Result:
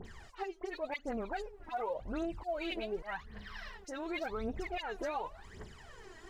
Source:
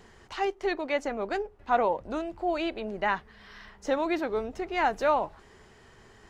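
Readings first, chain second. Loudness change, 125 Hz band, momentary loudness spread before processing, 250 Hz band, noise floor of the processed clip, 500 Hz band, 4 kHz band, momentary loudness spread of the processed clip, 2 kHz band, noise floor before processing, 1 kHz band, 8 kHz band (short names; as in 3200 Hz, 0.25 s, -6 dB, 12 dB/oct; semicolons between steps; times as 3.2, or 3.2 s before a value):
-10.0 dB, -1.5 dB, 9 LU, -8.0 dB, -56 dBFS, -10.0 dB, -6.0 dB, 14 LU, -9.5 dB, -56 dBFS, -12.0 dB, n/a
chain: auto swell 0.311 s; dispersion highs, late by 55 ms, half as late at 2500 Hz; compressor 2:1, threshold -36 dBFS, peak gain reduction 9.5 dB; phaser 0.89 Hz, delay 3.2 ms, feedback 75%; limiter -26.5 dBFS, peak gain reduction 8.5 dB; gain -2 dB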